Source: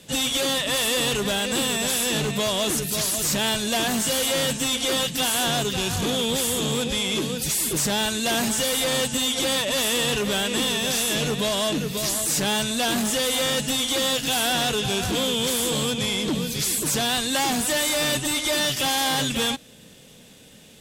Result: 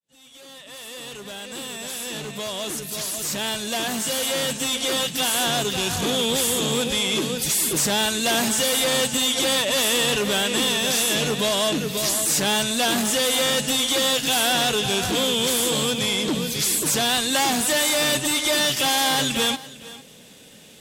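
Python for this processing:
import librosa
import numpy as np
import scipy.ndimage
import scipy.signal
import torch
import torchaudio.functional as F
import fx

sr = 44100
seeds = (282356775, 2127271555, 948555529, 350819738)

y = fx.fade_in_head(x, sr, length_s=6.36)
y = fx.low_shelf(y, sr, hz=120.0, db=-9.5)
y = y + 10.0 ** (-18.5 / 20.0) * np.pad(y, (int(453 * sr / 1000.0), 0))[:len(y)]
y = y * 10.0 ** (2.5 / 20.0)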